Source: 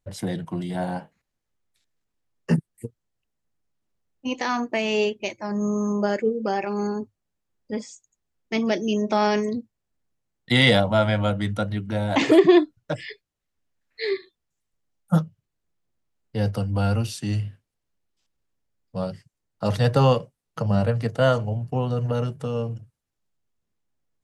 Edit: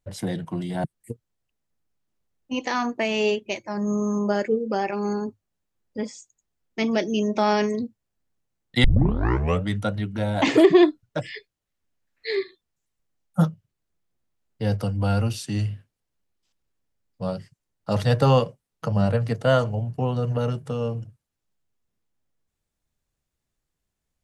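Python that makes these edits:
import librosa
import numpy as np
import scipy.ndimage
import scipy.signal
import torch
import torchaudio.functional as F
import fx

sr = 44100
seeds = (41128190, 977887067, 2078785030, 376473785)

y = fx.edit(x, sr, fx.cut(start_s=0.84, length_s=1.74),
    fx.tape_start(start_s=10.58, length_s=0.82), tone=tone)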